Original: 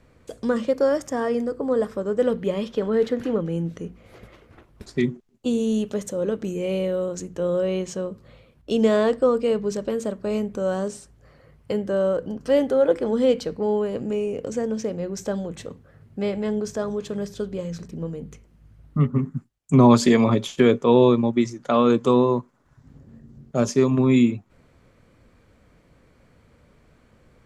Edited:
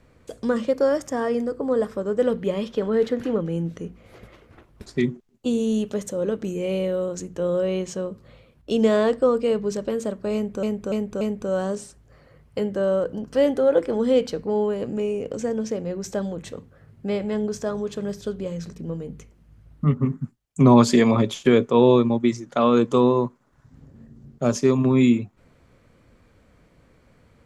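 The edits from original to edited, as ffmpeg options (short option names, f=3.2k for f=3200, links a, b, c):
-filter_complex "[0:a]asplit=4[a][b][c][d];[a]atrim=end=10.632[e];[b]atrim=start=10.338:end=10.632[f];[c]atrim=start=10.338:end=10.632[g];[d]atrim=start=10.338[h];[e][f]acrossfade=d=0.004:c1=hsin:c2=hsin[i];[i][g]acrossfade=d=0.004:c1=hsin:c2=hsin[j];[j][h]acrossfade=d=0.004:c1=hsin:c2=hsin"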